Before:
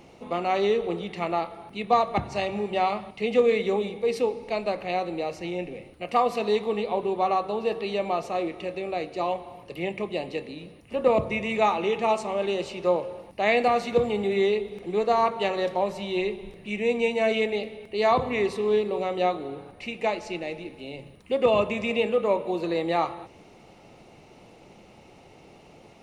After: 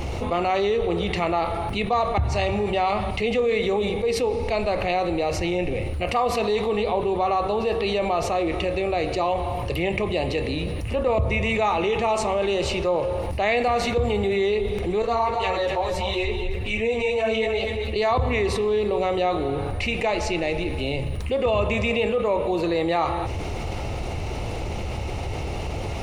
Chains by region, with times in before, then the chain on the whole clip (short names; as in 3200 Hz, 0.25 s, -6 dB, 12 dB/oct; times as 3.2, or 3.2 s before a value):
15.02–17.96 notch comb 200 Hz + echo 0.251 s -10.5 dB + ensemble effect
whole clip: resonant low shelf 120 Hz +14 dB, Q 1.5; fast leveller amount 70%; gain -3 dB